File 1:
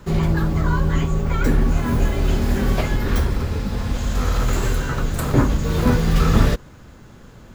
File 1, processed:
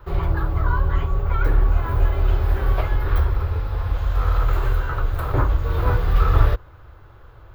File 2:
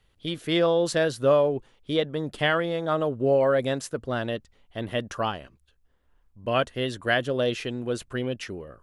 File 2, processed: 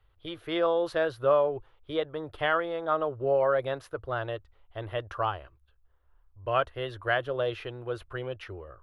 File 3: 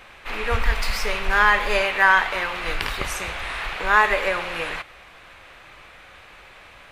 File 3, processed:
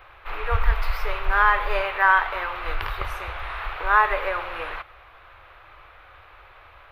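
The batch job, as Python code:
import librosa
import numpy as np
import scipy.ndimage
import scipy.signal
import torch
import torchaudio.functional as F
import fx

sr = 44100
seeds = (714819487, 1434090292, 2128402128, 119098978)

y = fx.curve_eq(x, sr, hz=(100.0, 220.0, 320.0, 540.0, 1300.0, 1800.0, 3700.0, 7700.0, 14000.0), db=(0, -26, -8, -5, 0, -7, -10, -26, -6))
y = y * librosa.db_to_amplitude(1.5)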